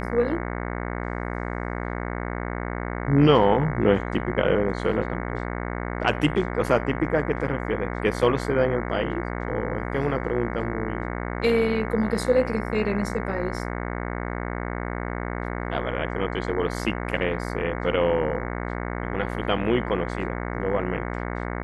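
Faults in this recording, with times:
buzz 60 Hz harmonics 37 -30 dBFS

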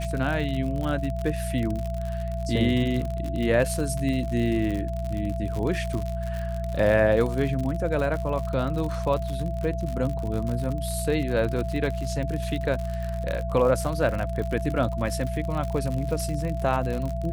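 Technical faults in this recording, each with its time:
crackle 73 per s -29 dBFS
hum 60 Hz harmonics 3 -30 dBFS
whine 670 Hz -33 dBFS

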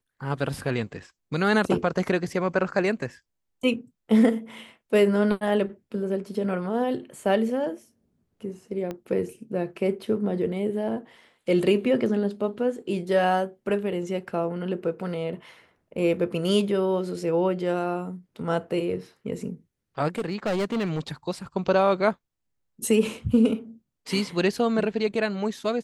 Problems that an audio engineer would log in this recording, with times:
8.91 s: pop -20 dBFS
20.18–21.00 s: clipped -22.5 dBFS

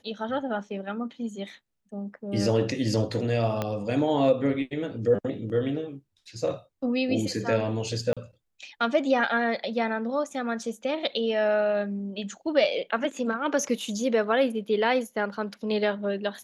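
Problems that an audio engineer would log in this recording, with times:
3.62 s: pop -14 dBFS
8.13–8.17 s: dropout 36 ms

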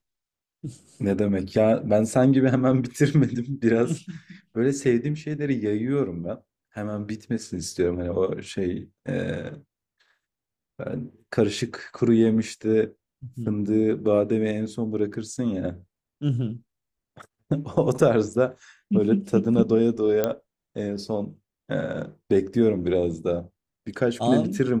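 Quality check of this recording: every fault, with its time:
20.24 s: pop -9 dBFS

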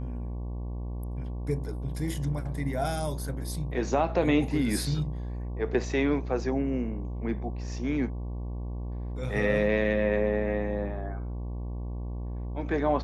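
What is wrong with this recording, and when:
buzz 60 Hz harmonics 19 -34 dBFS

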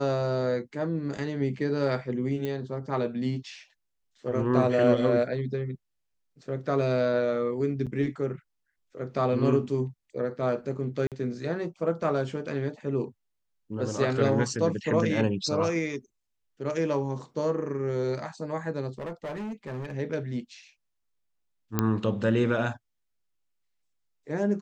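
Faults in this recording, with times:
2.45 s: pop -20 dBFS
7.86–7.87 s: dropout 7.4 ms
11.07–11.12 s: dropout 47 ms
18.98–19.95 s: clipped -31.5 dBFS
21.79 s: pop -10 dBFS

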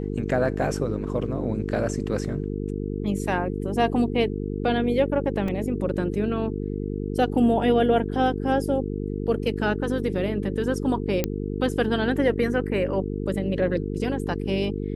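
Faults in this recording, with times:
buzz 50 Hz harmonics 9 -29 dBFS
5.48 s: dropout 3.3 ms
11.24 s: pop -8 dBFS

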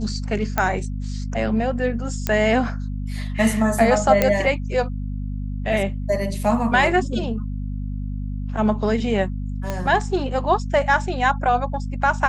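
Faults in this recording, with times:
hum 50 Hz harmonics 5 -27 dBFS
0.58 s: pop -6 dBFS
2.27 s: pop -7 dBFS
4.22 s: pop -3 dBFS
9.70 s: pop -12 dBFS

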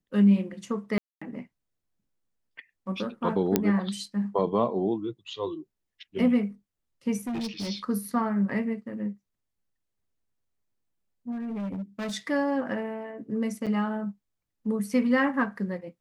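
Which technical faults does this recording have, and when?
0.98–1.22 s: dropout 235 ms
3.56 s: pop -7 dBFS
7.17–7.70 s: clipped -28.5 dBFS
11.31–12.14 s: clipped -30 dBFS
13.66–13.67 s: dropout 7 ms

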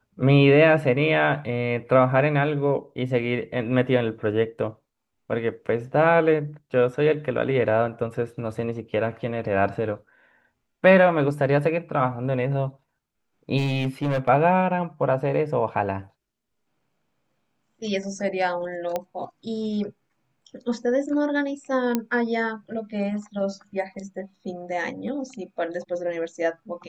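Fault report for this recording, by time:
13.57–14.29 s: clipped -20 dBFS
18.96 s: pop -13 dBFS
21.95 s: pop -9 dBFS

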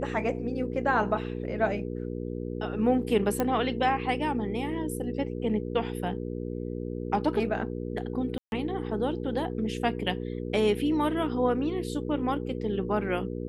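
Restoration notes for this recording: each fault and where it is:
hum 60 Hz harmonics 8 -34 dBFS
3.40 s: pop -13 dBFS
8.38–8.52 s: dropout 141 ms

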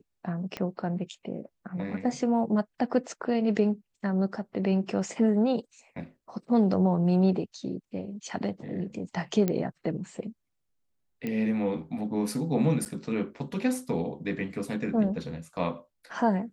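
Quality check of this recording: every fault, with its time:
0.57 s: pop -19 dBFS
9.48 s: pop -14 dBFS
11.27 s: pop -20 dBFS
12.85–12.86 s: dropout 9.1 ms

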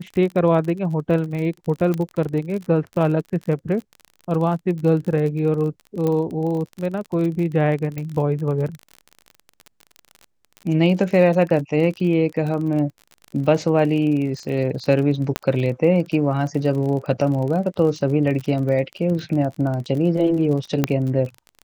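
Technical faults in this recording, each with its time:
crackle 39 per s -28 dBFS
1.94 s: pop -13 dBFS
6.07 s: pop -12 dBFS
7.98 s: pop -16 dBFS
15.36 s: pop -6 dBFS
20.84 s: pop -4 dBFS

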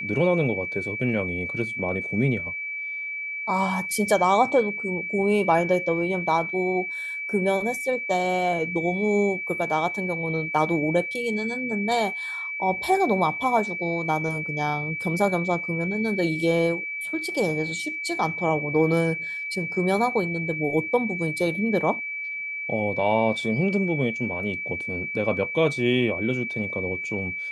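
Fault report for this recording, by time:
whine 2.3 kHz -29 dBFS

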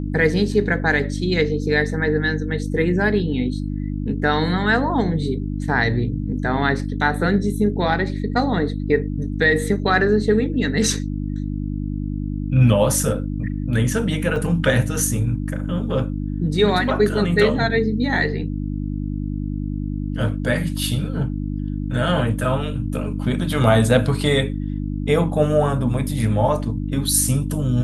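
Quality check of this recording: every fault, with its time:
hum 50 Hz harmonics 6 -25 dBFS
14.36 s: dropout 2.3 ms

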